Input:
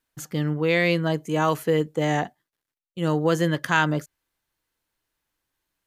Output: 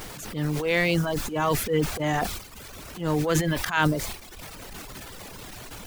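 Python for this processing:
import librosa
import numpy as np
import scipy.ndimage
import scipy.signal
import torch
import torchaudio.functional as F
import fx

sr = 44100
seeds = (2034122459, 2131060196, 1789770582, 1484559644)

y = fx.dmg_noise_colour(x, sr, seeds[0], colour='pink', level_db=-38.0)
y = fx.transient(y, sr, attack_db=-10, sustain_db=9)
y = fx.dereverb_blind(y, sr, rt60_s=1.0)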